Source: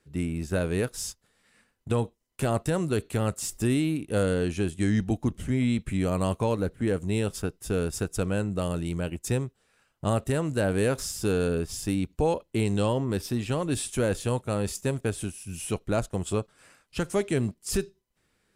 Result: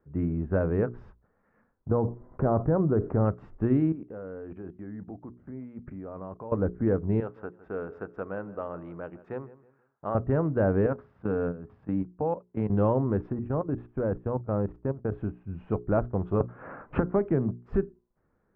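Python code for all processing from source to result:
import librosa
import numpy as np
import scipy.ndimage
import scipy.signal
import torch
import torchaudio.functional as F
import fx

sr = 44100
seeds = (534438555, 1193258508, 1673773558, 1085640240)

y = fx.chain(x, sr, fx.gaussian_blur(sigma=5.0),
    fx.env_flatten(amount_pct=50), at=(1.89, 3.25))
y = fx.chain(y, sr, fx.highpass(hz=230.0, slope=6),
    fx.level_steps(step_db=20), at=(3.92, 6.52))
y = fx.chain(y, sr, fx.highpass(hz=870.0, slope=6),
    fx.echo_feedback(ms=160, feedback_pct=33, wet_db=-17.0), at=(7.2, 10.15))
y = fx.chain(y, sr, fx.highpass(hz=120.0, slope=12),
    fx.peak_eq(hz=370.0, db=-12.0, octaves=0.27),
    fx.level_steps(step_db=14), at=(10.86, 12.7))
y = fx.chain(y, sr, fx.high_shelf(hz=2300.0, db=-8.0),
    fx.level_steps(step_db=14), at=(13.32, 15.12))
y = fx.chain(y, sr, fx.high_shelf(hz=5100.0, db=-12.0),
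    fx.band_squash(depth_pct=100), at=(16.4, 17.56))
y = fx.wiener(y, sr, points=9)
y = scipy.signal.sosfilt(scipy.signal.butter(4, 1400.0, 'lowpass', fs=sr, output='sos'), y)
y = fx.hum_notches(y, sr, base_hz=60, count=7)
y = y * 10.0 ** (2.0 / 20.0)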